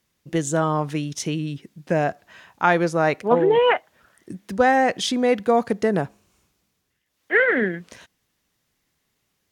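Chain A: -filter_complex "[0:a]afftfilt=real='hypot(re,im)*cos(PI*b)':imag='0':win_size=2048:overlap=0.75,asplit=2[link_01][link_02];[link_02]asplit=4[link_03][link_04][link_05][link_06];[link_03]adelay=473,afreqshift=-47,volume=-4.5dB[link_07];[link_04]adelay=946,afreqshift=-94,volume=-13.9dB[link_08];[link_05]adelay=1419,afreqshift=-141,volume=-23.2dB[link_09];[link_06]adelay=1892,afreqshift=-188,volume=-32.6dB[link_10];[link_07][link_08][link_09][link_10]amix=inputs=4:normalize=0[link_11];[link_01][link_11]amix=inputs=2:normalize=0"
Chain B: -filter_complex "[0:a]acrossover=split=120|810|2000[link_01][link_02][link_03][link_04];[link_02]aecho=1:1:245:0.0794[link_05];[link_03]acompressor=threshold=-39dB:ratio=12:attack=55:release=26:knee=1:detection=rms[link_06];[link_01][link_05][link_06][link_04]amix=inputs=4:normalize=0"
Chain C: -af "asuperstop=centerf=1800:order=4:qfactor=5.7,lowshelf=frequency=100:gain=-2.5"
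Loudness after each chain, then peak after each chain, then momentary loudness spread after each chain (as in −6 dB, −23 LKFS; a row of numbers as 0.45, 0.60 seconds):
−24.5, −22.5, −21.5 LKFS; −3.0, −7.0, −4.0 dBFS; 15, 13, 13 LU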